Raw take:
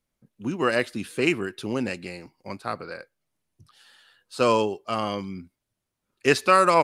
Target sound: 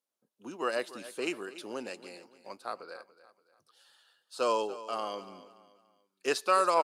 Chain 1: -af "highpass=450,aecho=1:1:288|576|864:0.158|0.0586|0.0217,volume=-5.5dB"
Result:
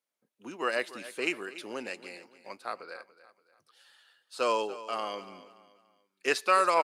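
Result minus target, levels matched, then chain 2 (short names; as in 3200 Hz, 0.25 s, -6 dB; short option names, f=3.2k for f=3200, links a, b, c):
2000 Hz band +4.0 dB
-af "highpass=450,equalizer=f=2.1k:w=1.9:g=-9,aecho=1:1:288|576|864:0.158|0.0586|0.0217,volume=-5.5dB"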